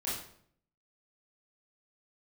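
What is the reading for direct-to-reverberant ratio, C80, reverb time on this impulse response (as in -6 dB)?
-9.0 dB, 6.5 dB, 0.60 s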